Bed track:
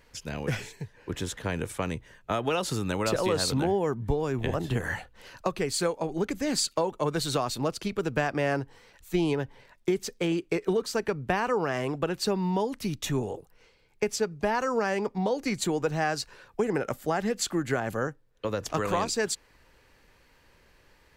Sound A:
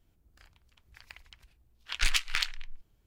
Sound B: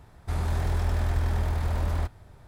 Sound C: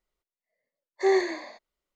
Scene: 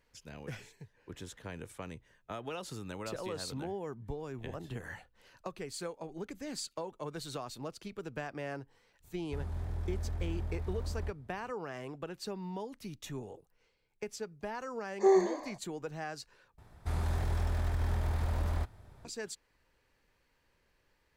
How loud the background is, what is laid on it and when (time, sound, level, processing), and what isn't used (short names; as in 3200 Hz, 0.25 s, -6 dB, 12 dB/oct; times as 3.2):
bed track -13 dB
9.04 add B -15 dB + tilt shelf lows +4.5 dB, about 650 Hz
14 add C -2 dB + band shelf 2800 Hz -12.5 dB
16.58 replace with B -5 dB + limiter -18.5 dBFS
not used: A